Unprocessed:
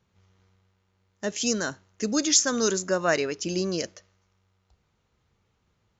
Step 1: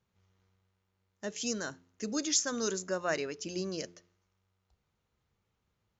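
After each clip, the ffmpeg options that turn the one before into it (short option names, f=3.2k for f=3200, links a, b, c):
-af "bandreject=f=87.28:t=h:w=4,bandreject=f=174.56:t=h:w=4,bandreject=f=261.84:t=h:w=4,bandreject=f=349.12:t=h:w=4,bandreject=f=436.4:t=h:w=4,volume=-8.5dB"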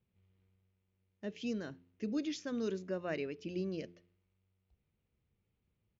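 -af "firequalizer=gain_entry='entry(260,0);entry(890,-11);entry(1400,-12);entry(2400,-3);entry(7500,-29)':delay=0.05:min_phase=1"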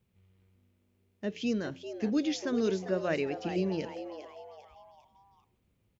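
-filter_complex "[0:a]asplit=5[a][b][c][d][e];[b]adelay=398,afreqshift=150,volume=-11dB[f];[c]adelay=796,afreqshift=300,volume=-18.3dB[g];[d]adelay=1194,afreqshift=450,volume=-25.7dB[h];[e]adelay=1592,afreqshift=600,volume=-33dB[i];[a][f][g][h][i]amix=inputs=5:normalize=0,volume=7dB"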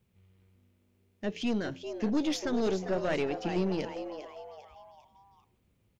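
-af "aeval=exprs='(tanh(22.4*val(0)+0.45)-tanh(0.45))/22.4':c=same,volume=4dB"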